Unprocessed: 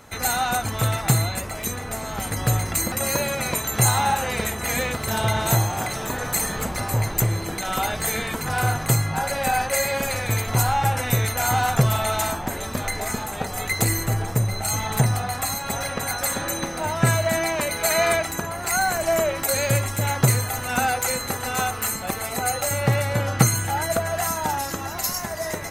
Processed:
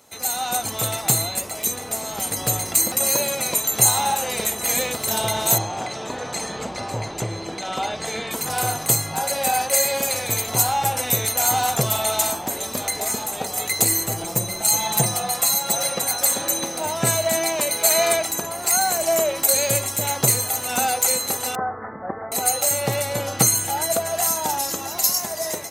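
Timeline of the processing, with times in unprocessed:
5.58–8.31 s: distance through air 130 m
14.17–16.02 s: comb 5.8 ms
21.55–22.32 s: steep low-pass 1.9 kHz 96 dB/octave
whole clip: high-pass 700 Hz 6 dB/octave; peaking EQ 1.6 kHz -12.5 dB 1.6 oct; level rider gain up to 7 dB; trim +1 dB

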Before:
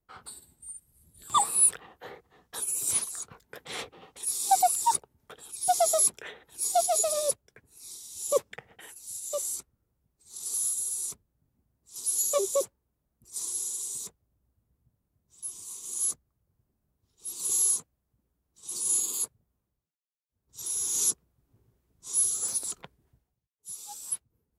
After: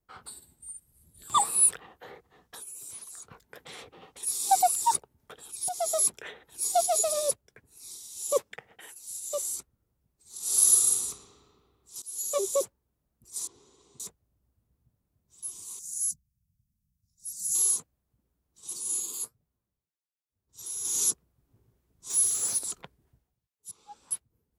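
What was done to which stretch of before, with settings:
1.94–4.23 s: compression, threshold -41 dBFS
5.69–6.27 s: fade in equal-power, from -13.5 dB
8.07–9.20 s: bass shelf 180 Hz -8 dB
10.39–10.88 s: reverb throw, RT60 2.3 s, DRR -11.5 dB
12.02–12.48 s: fade in, from -19.5 dB
13.47–14.00 s: tape spacing loss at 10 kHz 43 dB
15.79–17.55 s: elliptic band-stop 190–5300 Hz
18.73–20.85 s: flange 1.4 Hz, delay 6.4 ms, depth 5.6 ms, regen +67%
22.10–22.59 s: jump at every zero crossing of -35.5 dBFS
23.71–24.11 s: low-pass 2 kHz

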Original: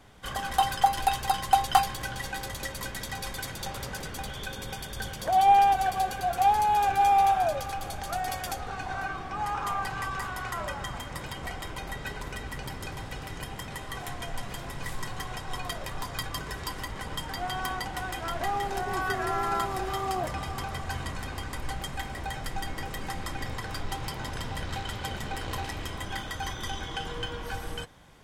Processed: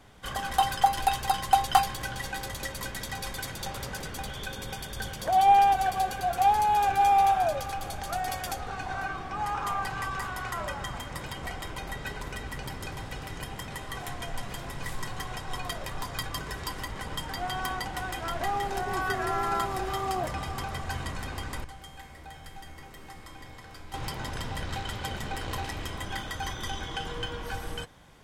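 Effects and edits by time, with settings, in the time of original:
21.64–23.94 s: feedback comb 78 Hz, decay 1.3 s, mix 80%

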